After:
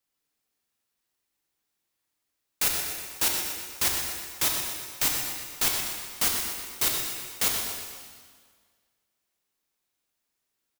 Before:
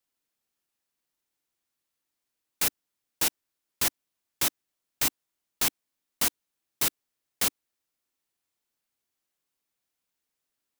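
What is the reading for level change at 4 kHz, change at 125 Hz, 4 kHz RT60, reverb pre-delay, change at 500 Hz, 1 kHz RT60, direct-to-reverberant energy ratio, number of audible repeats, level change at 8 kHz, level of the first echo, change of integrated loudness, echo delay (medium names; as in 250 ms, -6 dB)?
+3.5 dB, +2.5 dB, 1.6 s, 7 ms, +2.0 dB, 1.8 s, -0.5 dB, 2, +3.0 dB, -8.5 dB, +1.5 dB, 123 ms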